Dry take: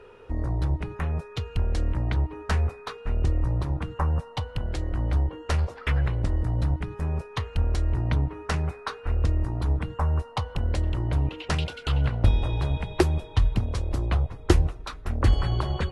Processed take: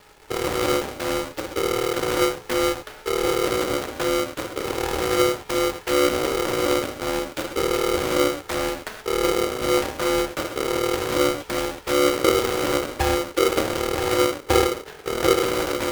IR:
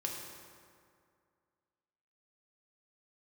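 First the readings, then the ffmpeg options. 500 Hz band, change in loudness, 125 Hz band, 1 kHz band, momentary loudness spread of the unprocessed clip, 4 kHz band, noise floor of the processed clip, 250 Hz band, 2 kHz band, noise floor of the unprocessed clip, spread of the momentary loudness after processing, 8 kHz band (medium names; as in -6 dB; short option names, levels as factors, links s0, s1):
+14.5 dB, +4.5 dB, -11.5 dB, +10.0 dB, 8 LU, +12.0 dB, -44 dBFS, +8.0 dB, +10.0 dB, -44 dBFS, 7 LU, no reading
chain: -filter_complex "[0:a]lowpass=2800,acrossover=split=250[s0][s1];[s1]alimiter=limit=0.126:level=0:latency=1:release=338[s2];[s0][s2]amix=inputs=2:normalize=0,acrusher=bits=5:dc=4:mix=0:aa=0.000001[s3];[1:a]atrim=start_sample=2205,afade=t=out:st=0.19:d=0.01,atrim=end_sample=8820[s4];[s3][s4]afir=irnorm=-1:irlink=0,aeval=exprs='val(0)*sgn(sin(2*PI*430*n/s))':c=same"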